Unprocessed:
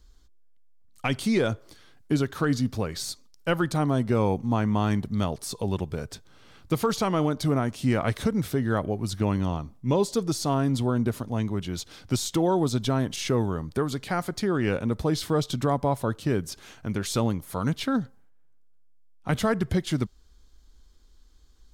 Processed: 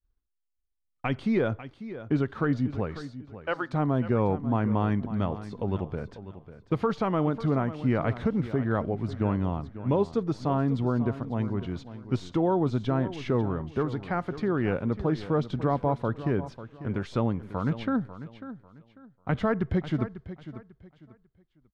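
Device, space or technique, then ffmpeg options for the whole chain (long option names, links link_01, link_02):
hearing-loss simulation: -filter_complex "[0:a]asettb=1/sr,asplit=3[link_01][link_02][link_03];[link_01]atrim=end=3.014[link_04];[link_02]atrim=start=3.01:end=3.73,asetpts=PTS-STARTPTS,afade=type=in:duration=0.004:curve=qsin,afade=type=out:start_time=0.716:duration=0.004:curve=qsin,highpass=490[link_05];[link_03]atrim=start=3.726[link_06];[link_04][link_05]acrossfade=duration=0.004:curve1=hsin:curve2=qsin[link_07];[link_07][link_06]acrossfade=duration=0.004:curve1=qsin:curve2=hsin,lowpass=2100,agate=range=-33dB:threshold=-40dB:ratio=3:detection=peak,aecho=1:1:545|1090|1635:0.211|0.0571|0.0154,volume=-1.5dB"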